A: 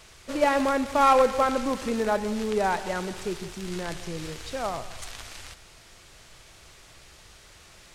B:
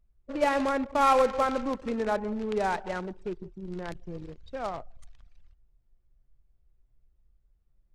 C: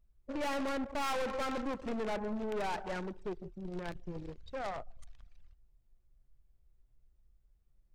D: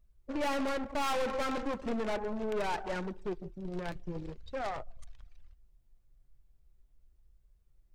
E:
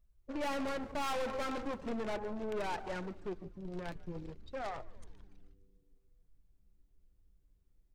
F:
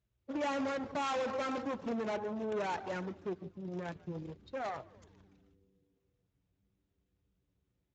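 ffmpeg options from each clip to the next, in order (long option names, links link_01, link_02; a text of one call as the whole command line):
ffmpeg -i in.wav -af "anlmdn=15.8,volume=-3dB" out.wav
ffmpeg -i in.wav -af "aeval=exprs='(tanh(44.7*val(0)+0.45)-tanh(0.45))/44.7':channel_layout=same" out.wav
ffmpeg -i in.wav -af "flanger=delay=1.8:depth=5.6:regen=-59:speed=0.4:shape=sinusoidal,volume=6.5dB" out.wav
ffmpeg -i in.wav -filter_complex "[0:a]asplit=6[link_01][link_02][link_03][link_04][link_05][link_06];[link_02]adelay=145,afreqshift=-100,volume=-21dB[link_07];[link_03]adelay=290,afreqshift=-200,volume=-25.2dB[link_08];[link_04]adelay=435,afreqshift=-300,volume=-29.3dB[link_09];[link_05]adelay=580,afreqshift=-400,volume=-33.5dB[link_10];[link_06]adelay=725,afreqshift=-500,volume=-37.6dB[link_11];[link_01][link_07][link_08][link_09][link_10][link_11]amix=inputs=6:normalize=0,volume=-4dB" out.wav
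ffmpeg -i in.wav -af "volume=1.5dB" -ar 16000 -c:a libspeex -b:a 17k out.spx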